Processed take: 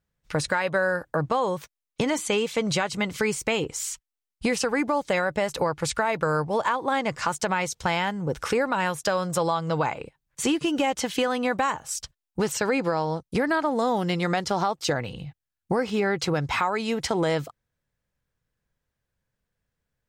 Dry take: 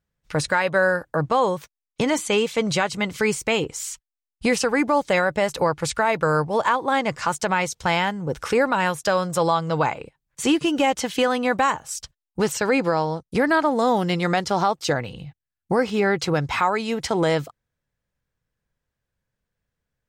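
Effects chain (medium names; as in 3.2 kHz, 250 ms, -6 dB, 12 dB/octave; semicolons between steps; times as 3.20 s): compression 2.5:1, threshold -22 dBFS, peak gain reduction 5.5 dB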